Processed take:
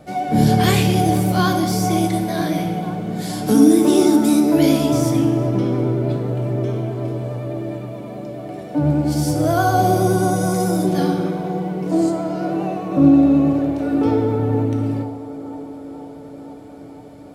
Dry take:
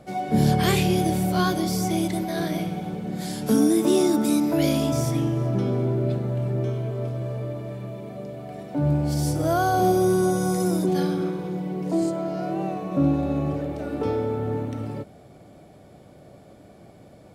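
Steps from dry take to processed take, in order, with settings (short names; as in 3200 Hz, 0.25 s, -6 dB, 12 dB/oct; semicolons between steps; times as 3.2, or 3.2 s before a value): band-limited delay 0.48 s, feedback 73%, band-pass 600 Hz, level -11.5 dB; vibrato 9.6 Hz 36 cents; FDN reverb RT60 0.93 s, low-frequency decay 1×, high-frequency decay 0.95×, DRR 5.5 dB; gain +3.5 dB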